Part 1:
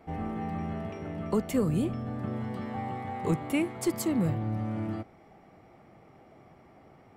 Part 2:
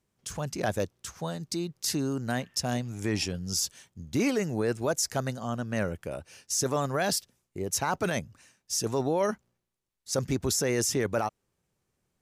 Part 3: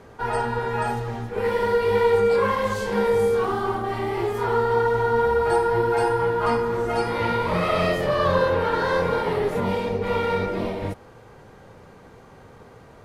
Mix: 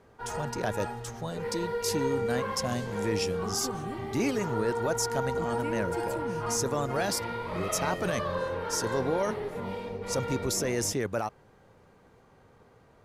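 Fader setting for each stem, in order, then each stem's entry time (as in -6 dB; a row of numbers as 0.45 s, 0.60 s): -11.5 dB, -2.5 dB, -11.5 dB; 2.10 s, 0.00 s, 0.00 s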